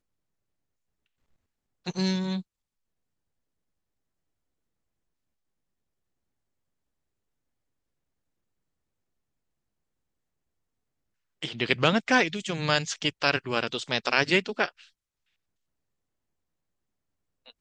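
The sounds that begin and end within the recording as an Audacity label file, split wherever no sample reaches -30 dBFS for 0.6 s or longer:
1.870000	2.400000	sound
11.430000	14.680000	sound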